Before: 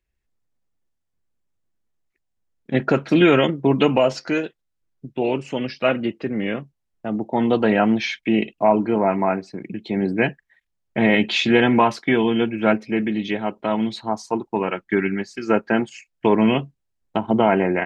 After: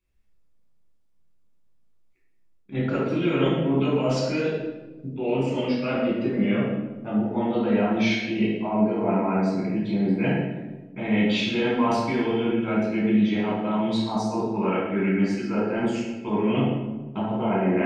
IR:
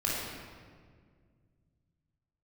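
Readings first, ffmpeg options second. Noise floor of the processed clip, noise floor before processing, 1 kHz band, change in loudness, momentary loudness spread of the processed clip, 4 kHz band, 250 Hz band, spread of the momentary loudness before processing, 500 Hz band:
-58 dBFS, -76 dBFS, -6.0 dB, -4.0 dB, 7 LU, -5.0 dB, -2.0 dB, 11 LU, -5.0 dB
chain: -filter_complex "[0:a]areverse,acompressor=threshold=-25dB:ratio=6,areverse[a];[1:a]atrim=start_sample=2205,asetrate=83790,aresample=44100[b];[a][b]afir=irnorm=-1:irlink=0"

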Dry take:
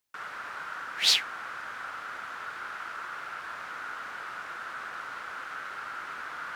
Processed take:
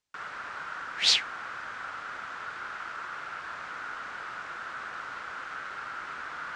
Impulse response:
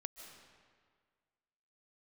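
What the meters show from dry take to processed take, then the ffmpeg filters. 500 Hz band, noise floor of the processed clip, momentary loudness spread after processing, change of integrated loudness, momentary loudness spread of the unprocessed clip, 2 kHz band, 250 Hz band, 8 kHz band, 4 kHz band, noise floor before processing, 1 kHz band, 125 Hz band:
+0.5 dB, -41 dBFS, 12 LU, 0.0 dB, 13 LU, 0.0 dB, +1.5 dB, -1.0 dB, 0.0 dB, -41 dBFS, 0.0 dB, +3.0 dB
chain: -af "lowpass=f=8.1k:w=0.5412,lowpass=f=8.1k:w=1.3066,lowshelf=f=160:g=5"

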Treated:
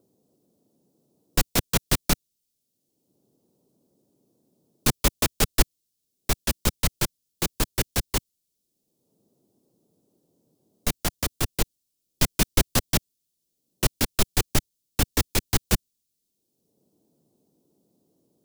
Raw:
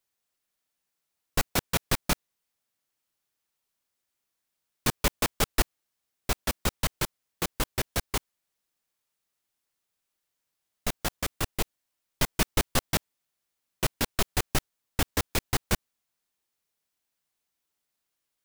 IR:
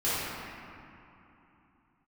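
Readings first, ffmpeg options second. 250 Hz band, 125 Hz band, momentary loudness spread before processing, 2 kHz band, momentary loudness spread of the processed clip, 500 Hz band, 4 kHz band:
+4.5 dB, +5.0 dB, 7 LU, +1.0 dB, 7 LU, +2.0 dB, +3.5 dB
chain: -filter_complex "[0:a]acrossover=split=130|450|3400[a][b][c][d];[b]acompressor=mode=upward:threshold=-51dB:ratio=2.5[e];[c]acrusher=bits=3:dc=4:mix=0:aa=0.000001[f];[a][e][f][d]amix=inputs=4:normalize=0,volume=5dB"

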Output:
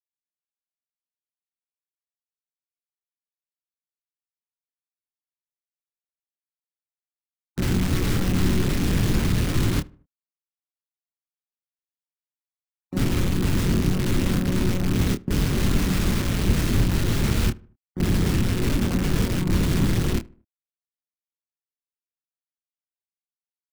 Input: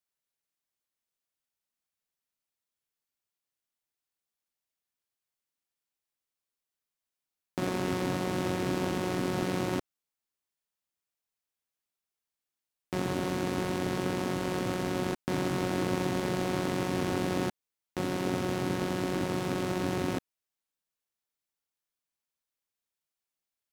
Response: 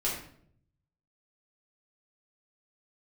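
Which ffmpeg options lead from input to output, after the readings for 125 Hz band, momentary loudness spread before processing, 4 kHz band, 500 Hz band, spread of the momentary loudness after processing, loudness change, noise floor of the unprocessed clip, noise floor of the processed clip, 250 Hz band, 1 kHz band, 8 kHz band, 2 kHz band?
+13.0 dB, 4 LU, +8.0 dB, +0.5 dB, 5 LU, +8.0 dB, under -85 dBFS, under -85 dBFS, +7.5 dB, -1.0 dB, +9.5 dB, +5.0 dB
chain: -filter_complex "[0:a]afftfilt=real='re*gte(hypot(re,im),0.02)':imag='im*gte(hypot(re,im),0.02)':win_size=1024:overlap=0.75,agate=range=-12dB:threshold=-30dB:ratio=16:detection=peak,highpass=120,lowpass=3.1k,equalizer=f=860:t=o:w=1.7:g=8.5,asplit=2[a][b];[b]acrusher=samples=31:mix=1:aa=0.000001:lfo=1:lforange=18.6:lforate=0.97,volume=-9.5dB[c];[a][c]amix=inputs=2:normalize=0,aphaser=in_gain=1:out_gain=1:delay=3.9:decay=0.41:speed=0.66:type=sinusoidal,aeval=exprs='(mod(18.8*val(0)+1,2)-1)/18.8':c=same,asplit=2[d][e];[e]adelay=27,volume=-8.5dB[f];[d][f]amix=inputs=2:normalize=0,asplit=2[g][h];[h]adelay=76,lowpass=f=1.6k:p=1,volume=-22dB,asplit=2[i][j];[j]adelay=76,lowpass=f=1.6k:p=1,volume=0.42,asplit=2[k][l];[l]adelay=76,lowpass=f=1.6k:p=1,volume=0.42[m];[i][k][m]amix=inputs=3:normalize=0[n];[g][n]amix=inputs=2:normalize=0,asubboost=boost=10.5:cutoff=220"

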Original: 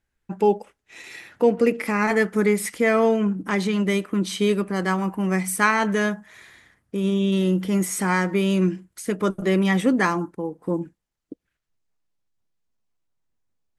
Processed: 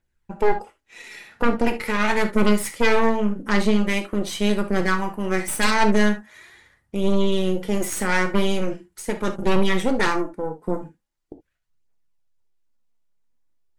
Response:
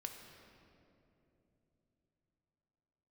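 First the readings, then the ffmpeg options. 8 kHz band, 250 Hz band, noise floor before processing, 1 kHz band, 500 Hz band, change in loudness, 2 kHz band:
0.0 dB, -1.0 dB, -80 dBFS, +1.0 dB, -1.0 dB, -0.5 dB, +1.0 dB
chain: -filter_complex "[0:a]aphaser=in_gain=1:out_gain=1:delay=5:decay=0.42:speed=0.42:type=triangular,aeval=exprs='0.631*(cos(1*acos(clip(val(0)/0.631,-1,1)))-cos(1*PI/2))+0.2*(cos(5*acos(clip(val(0)/0.631,-1,1)))-cos(5*PI/2))+0.316*(cos(6*acos(clip(val(0)/0.631,-1,1)))-cos(6*PI/2))':c=same[a];[1:a]atrim=start_sample=2205,afade=t=out:st=0.2:d=0.01,atrim=end_sample=9261,asetrate=83790,aresample=44100[b];[a][b]afir=irnorm=-1:irlink=0"

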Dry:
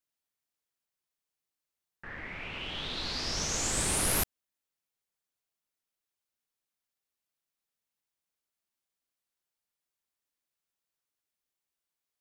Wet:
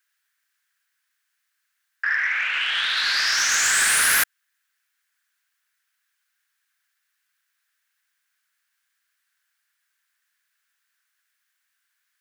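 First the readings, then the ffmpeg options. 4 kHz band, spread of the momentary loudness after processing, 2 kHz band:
+12.5 dB, 7 LU, +20.0 dB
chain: -af "highpass=f=1.6k:t=q:w=4.9,aeval=exprs='0.188*sin(PI/2*2.51*val(0)/0.188)':c=same,aeval=exprs='0.188*(cos(1*acos(clip(val(0)/0.188,-1,1)))-cos(1*PI/2))+0.00106*(cos(4*acos(clip(val(0)/0.188,-1,1)))-cos(4*PI/2))':c=same"

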